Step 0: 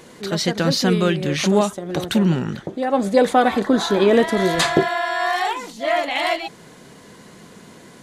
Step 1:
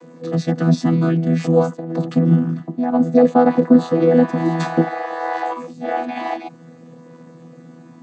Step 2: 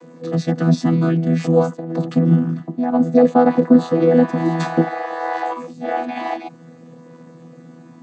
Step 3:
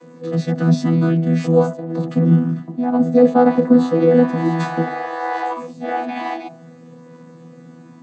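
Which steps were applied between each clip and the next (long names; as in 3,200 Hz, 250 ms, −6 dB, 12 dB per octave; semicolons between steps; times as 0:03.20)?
channel vocoder with a chord as carrier bare fifth, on E3; parametric band 3,100 Hz −6.5 dB 1.2 octaves; level +3 dB
no processing that can be heard
hum removal 50.6 Hz, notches 22; harmonic and percussive parts rebalanced harmonic +9 dB; level −7.5 dB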